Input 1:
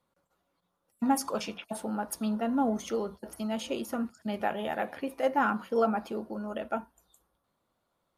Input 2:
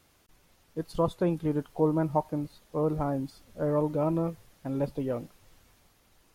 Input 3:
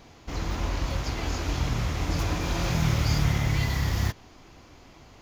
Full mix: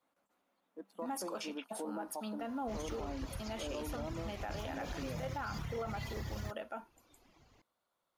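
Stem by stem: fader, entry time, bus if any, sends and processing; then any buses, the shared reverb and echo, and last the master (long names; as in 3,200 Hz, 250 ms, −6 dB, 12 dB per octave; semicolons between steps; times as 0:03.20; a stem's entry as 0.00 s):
−4.0 dB, 0.00 s, no send, low-shelf EQ 340 Hz −11.5 dB; floating-point word with a short mantissa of 6 bits
−9.5 dB, 0.00 s, no send, adaptive Wiener filter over 9 samples; noise gate with hold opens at −57 dBFS; Chebyshev high-pass with heavy ripple 190 Hz, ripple 6 dB
−11.5 dB, 2.40 s, no send, reverb reduction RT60 1.4 s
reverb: not used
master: brickwall limiter −31.5 dBFS, peak gain reduction 11 dB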